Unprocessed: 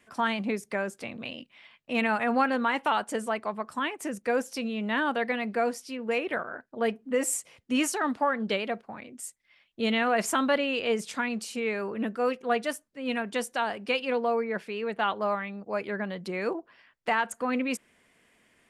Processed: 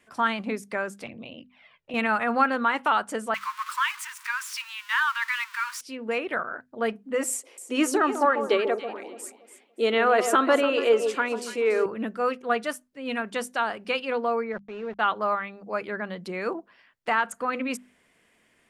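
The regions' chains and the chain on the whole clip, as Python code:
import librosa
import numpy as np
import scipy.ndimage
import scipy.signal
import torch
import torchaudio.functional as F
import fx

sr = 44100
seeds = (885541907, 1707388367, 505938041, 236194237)

y = fx.chain(x, sr, fx.lowpass(hz=2200.0, slope=6),
    fx.env_flanger(rest_ms=2.6, full_db=-37.0),
    fx.band_squash(depth_pct=40), at=(1.06, 1.94))
y = fx.chain(y, sr, fx.zero_step(step_db=-35.0),
    fx.cheby1_highpass(hz=930.0, order=8),
    fx.peak_eq(hz=2500.0, db=4.0, octaves=1.2), at=(3.34, 5.81))
y = fx.chain(y, sr, fx.highpass_res(hz=370.0, q=3.5),
    fx.echo_alternate(ms=143, hz=1000.0, feedback_pct=53, wet_db=-7.0), at=(7.29, 11.86))
y = fx.chain(y, sr, fx.sample_gate(floor_db=-37.5),
    fx.spacing_loss(db_at_10k=36), at=(14.52, 14.99))
y = fx.hum_notches(y, sr, base_hz=50, count=5)
y = fx.dynamic_eq(y, sr, hz=1300.0, q=2.6, threshold_db=-44.0, ratio=4.0, max_db=7)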